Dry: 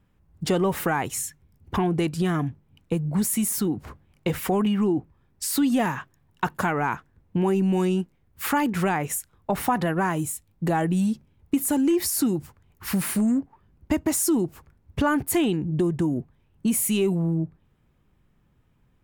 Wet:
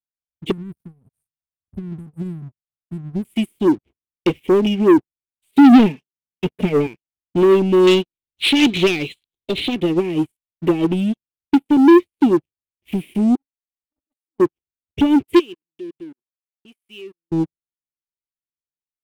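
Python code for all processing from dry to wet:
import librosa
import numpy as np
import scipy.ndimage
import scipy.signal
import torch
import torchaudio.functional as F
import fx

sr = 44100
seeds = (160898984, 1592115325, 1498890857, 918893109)

y = fx.chain(x, sr, fx.brickwall_bandstop(low_hz=250.0, high_hz=8200.0),
    fx.peak_eq(hz=220.0, db=-5.0, octaves=0.21),
    fx.doppler_dist(depth_ms=0.28), at=(0.51, 3.25))
y = fx.chain(y, sr, fx.highpass(hz=43.0, slope=24),
    fx.tilt_eq(slope=-1.5),
    fx.comb(ms=4.6, depth=0.88), at=(5.51, 6.87))
y = fx.chain(y, sr, fx.law_mismatch(coded='mu'),
    fx.lowpass_res(hz=4100.0, q=14.0),
    fx.high_shelf(hz=2400.0, db=8.0), at=(7.87, 9.75))
y = fx.chain(y, sr, fx.lowpass(hz=2000.0, slope=6),
    fx.hum_notches(base_hz=60, count=4), at=(11.55, 12.22))
y = fx.chain(y, sr, fx.over_compress(threshold_db=-32.0, ratio=-1.0),
    fx.fixed_phaser(hz=530.0, stages=8),
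    fx.comb_fb(f0_hz=590.0, decay_s=0.21, harmonics='odd', damping=0.0, mix_pct=80), at=(13.35, 14.4))
y = fx.chain(y, sr, fx.highpass(hz=930.0, slope=6),
    fx.level_steps(step_db=18), at=(15.39, 17.32))
y = fx.curve_eq(y, sr, hz=(190.0, 360.0, 1400.0, 2300.0, 3300.0, 5400.0, 8300.0), db=(0, 11, -30, 7, 9, -29, -10))
y = fx.leveller(y, sr, passes=3)
y = fx.upward_expand(y, sr, threshold_db=-34.0, expansion=2.5)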